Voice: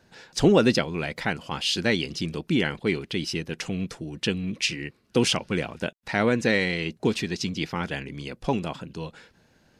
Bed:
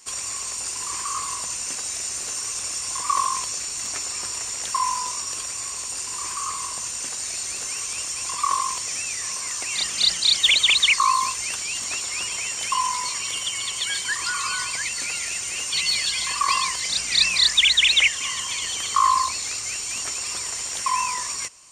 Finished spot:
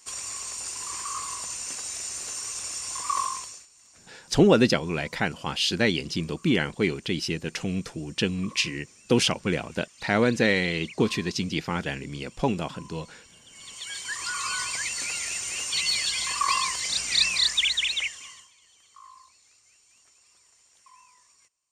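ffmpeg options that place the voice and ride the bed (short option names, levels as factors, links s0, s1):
-filter_complex "[0:a]adelay=3950,volume=1.06[s0];[1:a]volume=8.41,afade=t=out:st=3.22:d=0.45:silence=0.0841395,afade=t=in:st=13.47:d=1.11:silence=0.0668344,afade=t=out:st=17.15:d=1.36:silence=0.0375837[s1];[s0][s1]amix=inputs=2:normalize=0"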